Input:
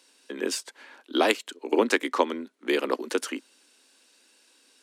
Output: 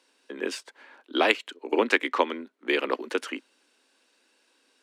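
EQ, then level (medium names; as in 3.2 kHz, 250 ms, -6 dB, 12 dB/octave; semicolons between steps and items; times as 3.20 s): bass shelf 210 Hz -7.5 dB; treble shelf 3.7 kHz -12 dB; dynamic bell 2.6 kHz, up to +8 dB, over -45 dBFS, Q 0.95; 0.0 dB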